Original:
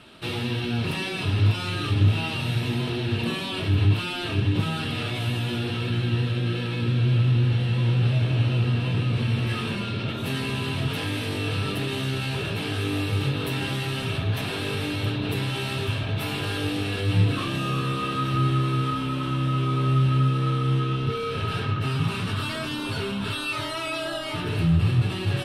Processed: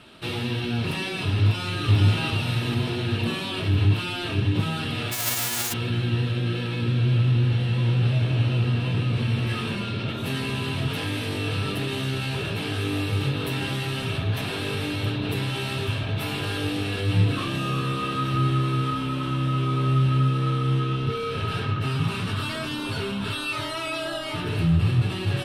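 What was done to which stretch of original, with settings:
1.44–1.86 echo throw 0.44 s, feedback 65%, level -1.5 dB
5.11–5.72 spectral whitening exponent 0.1

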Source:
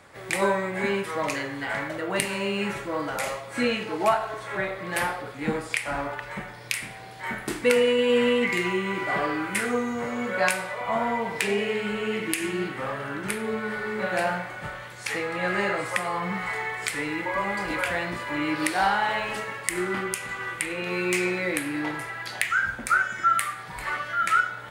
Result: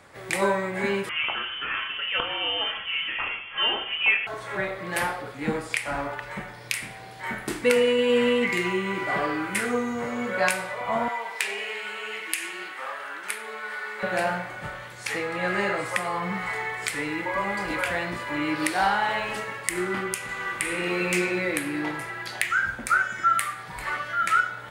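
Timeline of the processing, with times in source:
1.09–4.27 inverted band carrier 3300 Hz
11.08–14.03 HPF 820 Hz
20.23–21.1 reverb throw, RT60 2.7 s, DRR 0.5 dB

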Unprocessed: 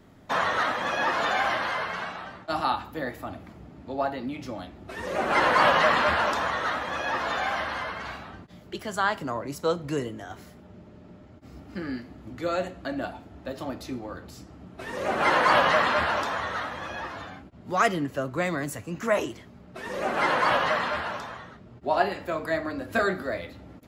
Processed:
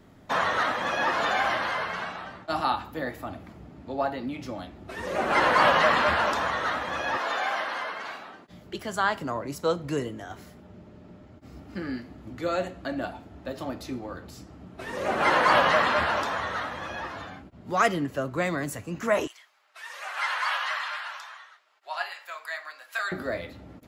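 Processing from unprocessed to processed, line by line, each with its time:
7.17–8.49 HPF 340 Hz
19.27–23.12 Bessel high-pass 1400 Hz, order 4

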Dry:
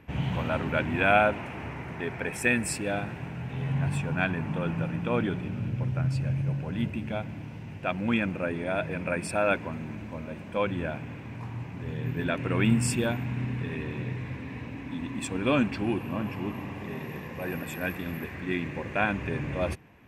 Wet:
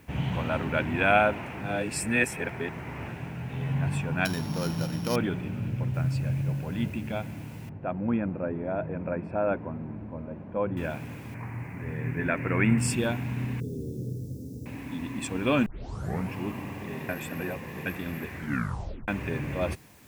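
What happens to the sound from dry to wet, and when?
1.61–3.08 reverse
4.25–5.16 sample sorter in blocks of 8 samples
5.94 noise floor step -66 dB -59 dB
7.69–10.77 LPF 1000 Hz
11.34–12.78 resonant high shelf 2700 Hz -8 dB, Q 3
13.6–14.66 elliptic band-stop 470–5400 Hz, stop band 60 dB
15.66 tape start 0.66 s
17.09–17.86 reverse
18.36 tape stop 0.72 s

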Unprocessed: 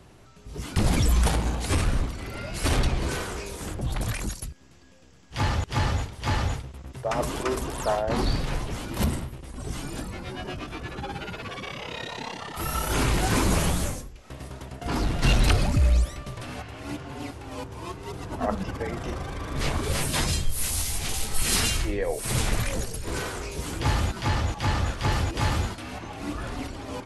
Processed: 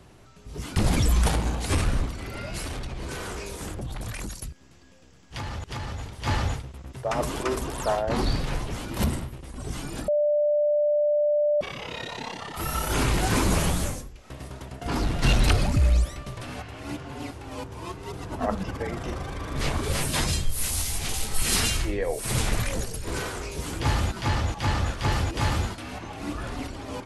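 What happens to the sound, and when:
2.6–6.12 compressor 12:1, threshold -29 dBFS
10.08–11.61 bleep 592 Hz -19 dBFS

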